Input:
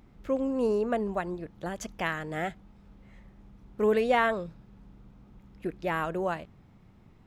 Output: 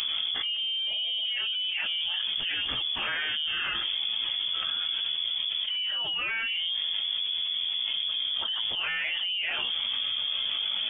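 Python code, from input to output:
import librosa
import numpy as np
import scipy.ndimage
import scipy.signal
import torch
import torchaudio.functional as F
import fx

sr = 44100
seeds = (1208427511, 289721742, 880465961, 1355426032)

y = fx.stretch_vocoder_free(x, sr, factor=1.5)
y = fx.freq_invert(y, sr, carrier_hz=3400)
y = fx.env_flatten(y, sr, amount_pct=100)
y = F.gain(torch.from_numpy(y), -7.0).numpy()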